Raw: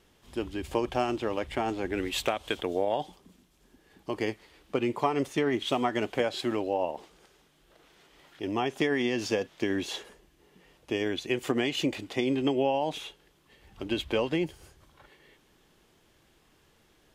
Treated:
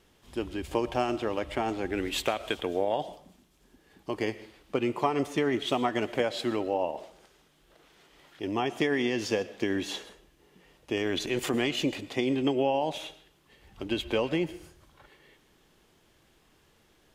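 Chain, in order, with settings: 10.97–11.71 s: transient shaper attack -3 dB, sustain +8 dB; on a send: reverberation RT60 0.50 s, pre-delay 75 ms, DRR 16 dB

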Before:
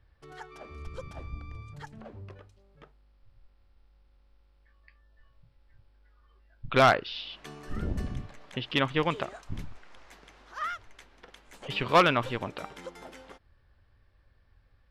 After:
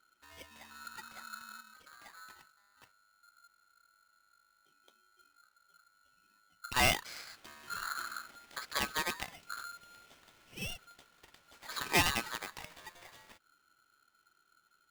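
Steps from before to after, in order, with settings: rippled Chebyshev low-pass 6.9 kHz, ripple 3 dB; 1.61–2.02 s: compressor with a negative ratio -52 dBFS, ratio -1; polarity switched at an audio rate 1.4 kHz; trim -6 dB

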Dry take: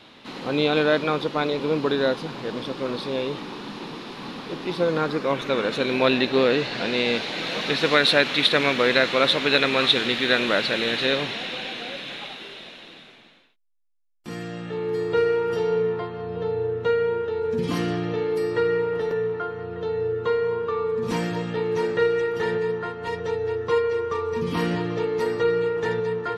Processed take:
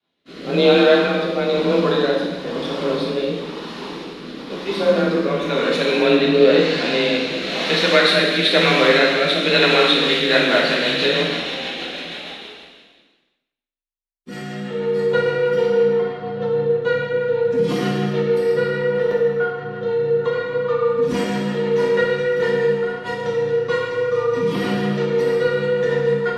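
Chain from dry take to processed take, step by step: frequency shift +27 Hz; expander -33 dBFS; rotary cabinet horn 1 Hz, later 6.3 Hz, at 9.64 s; gated-style reverb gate 430 ms falling, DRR -3 dB; trim +2.5 dB

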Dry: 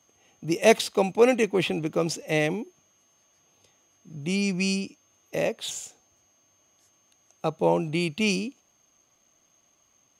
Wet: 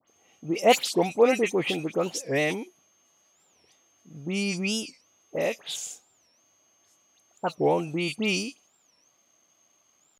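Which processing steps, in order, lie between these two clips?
high-pass 210 Hz 6 dB/octave; phase dispersion highs, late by 81 ms, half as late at 2.5 kHz; warped record 45 rpm, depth 250 cents

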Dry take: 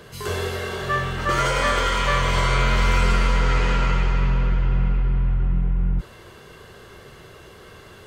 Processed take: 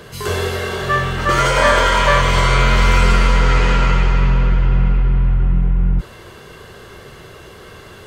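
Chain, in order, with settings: 1.57–2.21 s: small resonant body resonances 630/930/1600 Hz, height 10 dB; trim +6 dB

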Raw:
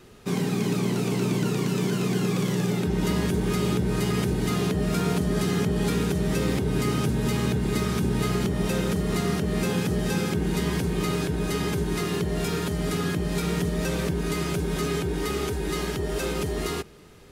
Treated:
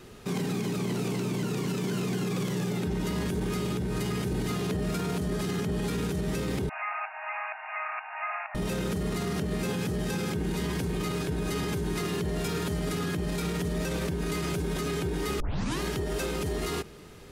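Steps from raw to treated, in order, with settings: 6.69–8.55 s: brick-wall FIR band-pass 620–2800 Hz; 15.40 s: tape start 0.41 s; peak limiter -24.5 dBFS, peak gain reduction 11 dB; trim +2 dB

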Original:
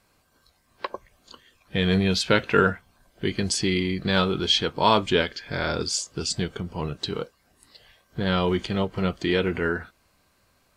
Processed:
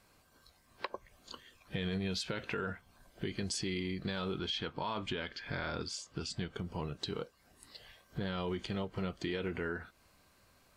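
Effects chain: peak limiter -15 dBFS, peak gain reduction 10.5 dB; compression 2.5:1, threshold -37 dBFS, peak gain reduction 11.5 dB; 4.39–6.55 s: FFT filter 290 Hz 0 dB, 420 Hz -3 dB, 1.1 kHz +2 dB, 3.1 kHz 0 dB, 7.2 kHz -7 dB; trim -1.5 dB

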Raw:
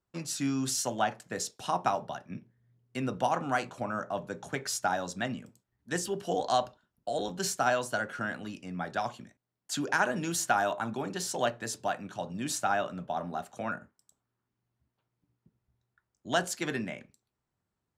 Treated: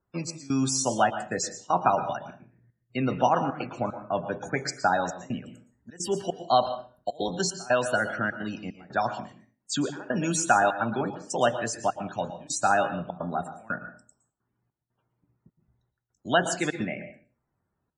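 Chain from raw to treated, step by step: trance gate "xxx..xxxxxx." 150 bpm -24 dB; loudest bins only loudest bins 64; reverberation RT60 0.40 s, pre-delay 109 ms, DRR 10.5 dB; trim +6 dB

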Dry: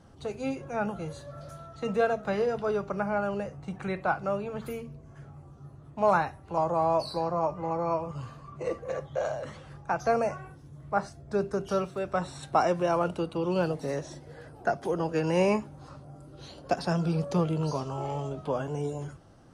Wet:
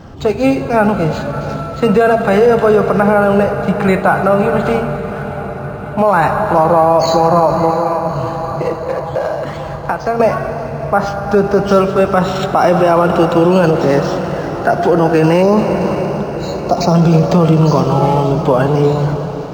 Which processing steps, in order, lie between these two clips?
7.70–10.20 s: compression 2.5:1, threshold -40 dBFS, peak gain reduction 13 dB; 15.42–16.94 s: spectral selection erased 1.4–3.8 kHz; echo that smears into a reverb 622 ms, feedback 66%, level -14.5 dB; gated-style reverb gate 470 ms flat, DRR 10.5 dB; loudness maximiser +21.5 dB; decimation joined by straight lines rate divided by 4×; trim -1 dB

